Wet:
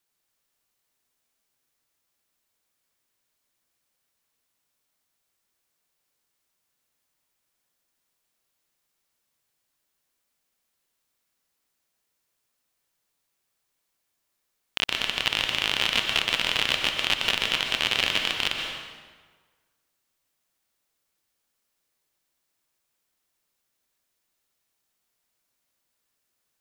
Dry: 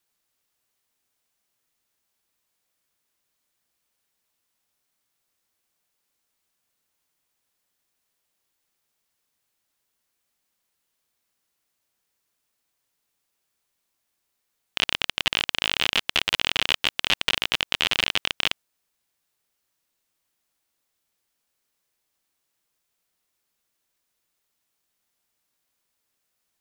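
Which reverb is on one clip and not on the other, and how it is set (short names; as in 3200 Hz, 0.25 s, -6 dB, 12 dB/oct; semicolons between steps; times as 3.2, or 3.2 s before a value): plate-style reverb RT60 1.5 s, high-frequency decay 0.75×, pre-delay 0.11 s, DRR 2.5 dB; gain -2 dB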